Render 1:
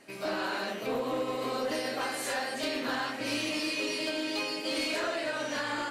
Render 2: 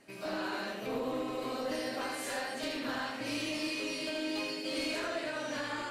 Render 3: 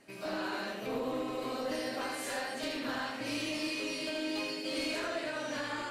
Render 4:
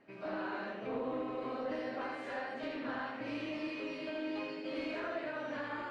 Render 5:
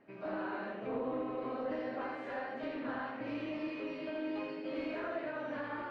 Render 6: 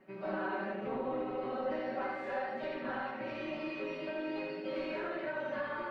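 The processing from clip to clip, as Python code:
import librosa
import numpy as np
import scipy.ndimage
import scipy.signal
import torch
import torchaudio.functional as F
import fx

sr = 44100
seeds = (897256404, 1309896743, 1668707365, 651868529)

y1 = fx.low_shelf(x, sr, hz=170.0, db=7.0)
y1 = y1 + 10.0 ** (-5.5 / 20.0) * np.pad(y1, (int(80 * sr / 1000.0), 0))[:len(y1)]
y1 = y1 * 10.0 ** (-5.5 / 20.0)
y2 = y1
y3 = scipy.signal.sosfilt(scipy.signal.butter(2, 2100.0, 'lowpass', fs=sr, output='sos'), y2)
y3 = fx.low_shelf(y3, sr, hz=73.0, db=-6.5)
y3 = y3 * 10.0 ** (-2.0 / 20.0)
y4 = fx.lowpass(y3, sr, hz=2000.0, slope=6)
y4 = y4 * 10.0 ** (1.0 / 20.0)
y5 = y4 + 0.91 * np.pad(y4, (int(5.3 * sr / 1000.0), 0))[:len(y4)]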